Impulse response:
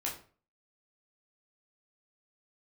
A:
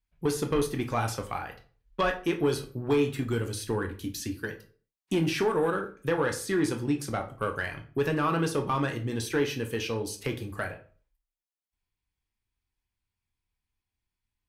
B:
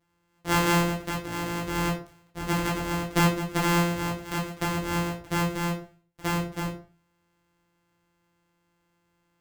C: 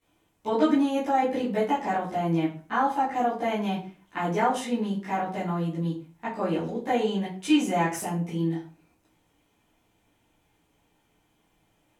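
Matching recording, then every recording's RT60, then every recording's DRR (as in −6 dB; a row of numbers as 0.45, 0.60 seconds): B; 0.40, 0.40, 0.40 seconds; 4.0, −4.0, −13.0 decibels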